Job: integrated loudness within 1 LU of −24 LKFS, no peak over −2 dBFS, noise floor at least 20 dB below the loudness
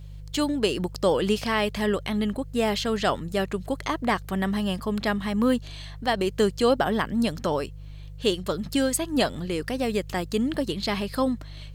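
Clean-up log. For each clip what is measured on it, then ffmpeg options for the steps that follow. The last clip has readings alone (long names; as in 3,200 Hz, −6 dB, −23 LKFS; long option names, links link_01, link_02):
mains hum 50 Hz; hum harmonics up to 150 Hz; level of the hum −37 dBFS; integrated loudness −26.0 LKFS; sample peak −10.5 dBFS; target loudness −24.0 LKFS
→ -af "bandreject=frequency=50:width_type=h:width=4,bandreject=frequency=100:width_type=h:width=4,bandreject=frequency=150:width_type=h:width=4"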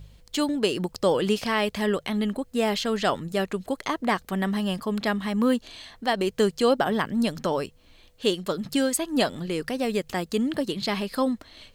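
mains hum none found; integrated loudness −26.0 LKFS; sample peak −11.0 dBFS; target loudness −24.0 LKFS
→ -af "volume=2dB"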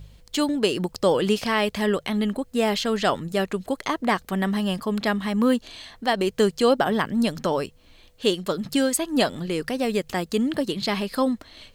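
integrated loudness −24.0 LKFS; sample peak −9.0 dBFS; background noise floor −54 dBFS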